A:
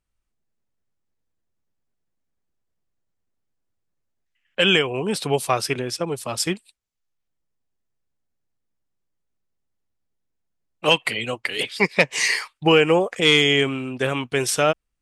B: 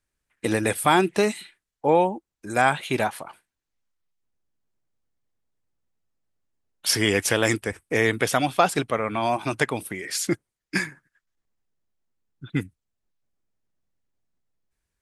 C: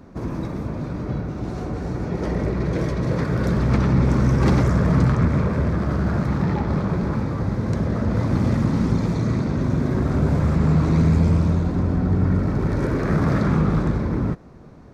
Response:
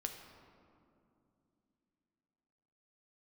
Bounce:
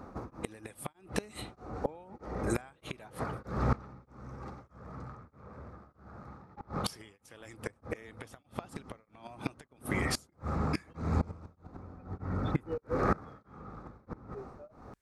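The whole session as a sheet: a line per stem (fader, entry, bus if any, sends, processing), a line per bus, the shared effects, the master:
-13.0 dB, 0.00 s, bus A, no send, tilt EQ -1.5 dB/octave; spectral contrast expander 2.5:1
-0.5 dB, 0.00 s, bus A, no send, none
-3.0 dB, 0.00 s, no bus, no send, graphic EQ with 31 bands 160 Hz -6 dB, 500 Hz +5 dB, 800 Hz +10 dB, 1.25 kHz +12 dB, 3.15 kHz -4 dB; auto duck -9 dB, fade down 0.50 s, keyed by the second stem
bus A: 0.0 dB, compression 3:1, threshold -22 dBFS, peak gain reduction 7 dB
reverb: none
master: inverted gate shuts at -16 dBFS, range -24 dB; tremolo of two beating tones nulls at 1.6 Hz

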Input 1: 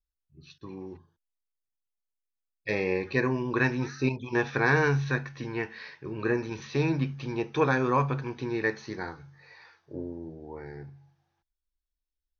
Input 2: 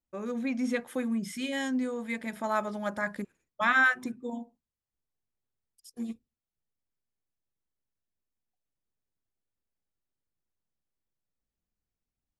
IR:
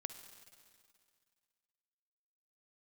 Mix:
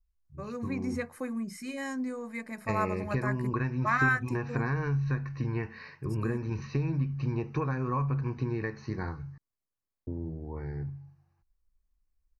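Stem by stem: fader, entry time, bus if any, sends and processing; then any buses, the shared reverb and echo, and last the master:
-3.5 dB, 0.00 s, muted 9.38–10.07 s, no send, bass shelf 150 Hz +11 dB; compression 12:1, threshold -27 dBFS, peak gain reduction 12 dB; tone controls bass +7 dB, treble -4 dB
-4.0 dB, 0.25 s, no send, band-stop 2.8 kHz, Q 7.4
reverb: none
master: Butterworth band-stop 3.4 kHz, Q 3.7; peaking EQ 1.1 kHz +8.5 dB 0.21 oct

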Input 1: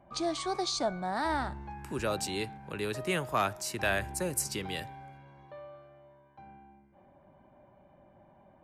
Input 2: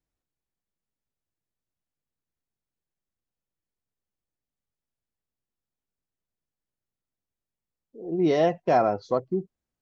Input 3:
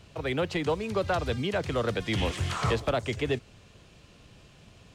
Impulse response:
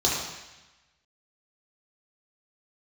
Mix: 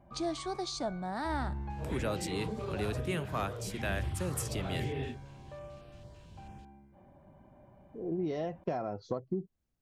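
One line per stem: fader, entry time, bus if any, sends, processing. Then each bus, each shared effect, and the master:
-4.5 dB, 0.00 s, no bus, no send, none
-5.5 dB, 0.00 s, bus A, no send, none
-8.0 dB, 1.70 s, bus A, no send, phase randomisation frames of 200 ms; peak limiter -23.5 dBFS, peak gain reduction 8 dB; step-sequenced notch 9 Hz 220–6700 Hz
bus A: 0.0 dB, compression 8:1, threshold -38 dBFS, peak gain reduction 16 dB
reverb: none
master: gain riding within 4 dB 0.5 s; bass shelf 240 Hz +9.5 dB

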